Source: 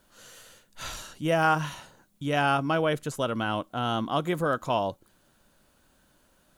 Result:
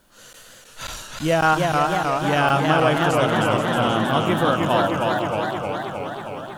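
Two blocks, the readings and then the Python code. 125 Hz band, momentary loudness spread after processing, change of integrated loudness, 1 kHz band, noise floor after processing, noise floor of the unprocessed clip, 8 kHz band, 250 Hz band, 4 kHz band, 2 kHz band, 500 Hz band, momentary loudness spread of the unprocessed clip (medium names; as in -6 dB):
+8.5 dB, 12 LU, +7.5 dB, +8.5 dB, -47 dBFS, -65 dBFS, +8.0 dB, +8.5 dB, +8.5 dB, +8.5 dB, +8.5 dB, 13 LU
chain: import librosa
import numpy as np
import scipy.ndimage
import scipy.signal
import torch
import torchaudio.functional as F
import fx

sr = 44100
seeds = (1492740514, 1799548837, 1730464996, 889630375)

y = x + 10.0 ** (-8.5 / 20.0) * np.pad(x, (int(480 * sr / 1000.0), 0))[:len(x)]
y = fx.buffer_crackle(y, sr, first_s=0.33, period_s=0.54, block=512, kind='zero')
y = fx.echo_warbled(y, sr, ms=315, feedback_pct=73, rate_hz=2.8, cents=131, wet_db=-3.0)
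y = F.gain(torch.from_numpy(y), 5.0).numpy()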